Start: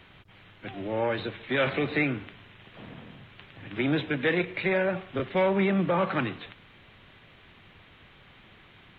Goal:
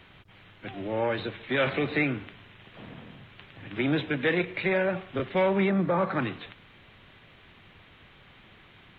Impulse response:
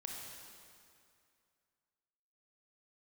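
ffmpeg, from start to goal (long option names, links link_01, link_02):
-filter_complex "[0:a]asettb=1/sr,asplit=3[link_01][link_02][link_03];[link_01]atrim=end=5.694[link_04];[link_02]atrim=start=5.69:end=6.22,asetpts=PTS-STARTPTS,afade=type=in:duration=0.004:curve=qsin,afade=type=out:start_time=0.526:duration=0.004:curve=qsin,equalizer=frequency=2900:width_type=o:width=0.52:gain=-12[link_05];[link_03]atrim=start=6.216[link_06];[link_04][link_05]acrossfade=duration=0.004:curve1=hsin:curve2=qsin[link_07];[link_07][link_06]acrossfade=duration=0.004:curve1=qsin:curve2=hsin"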